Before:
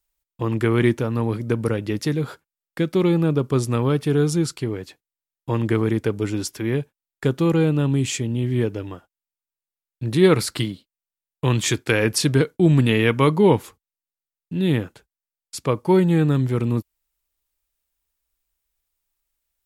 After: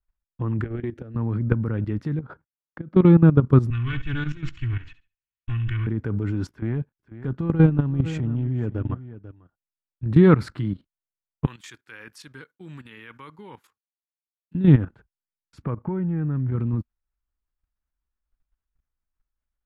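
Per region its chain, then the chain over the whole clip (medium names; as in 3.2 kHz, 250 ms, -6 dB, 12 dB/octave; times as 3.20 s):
0.64–1.16 s: compression 12:1, threshold -23 dBFS + static phaser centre 410 Hz, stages 4 + transformer saturation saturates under 330 Hz
2.19–2.96 s: high-pass 580 Hz 6 dB/octave + tilt EQ -4.5 dB/octave + compression 3:1, threshold -36 dBFS
3.70–5.87 s: comb filter that takes the minimum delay 2.7 ms + FFT filter 120 Hz 0 dB, 320 Hz -17 dB, 530 Hz -27 dB, 2.8 kHz +13 dB, 4.8 kHz -3 dB, 6.8 kHz +4 dB, 11 kHz -21 dB + flutter echo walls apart 11.6 m, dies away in 0.32 s
6.50–10.06 s: transient shaper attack -10 dB, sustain -5 dB + delay 492 ms -14.5 dB
11.46–14.55 s: Butterworth band-stop 660 Hz, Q 7.9 + differentiator
15.62–16.52 s: low-pass 2.8 kHz 24 dB/octave + compression 4:1, threshold -27 dBFS
whole clip: bass shelf 230 Hz +8.5 dB; level held to a coarse grid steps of 14 dB; FFT filter 240 Hz 0 dB, 470 Hz -6 dB, 1.5 kHz +1 dB, 2.2 kHz -8 dB, 9.8 kHz -27 dB; trim +4 dB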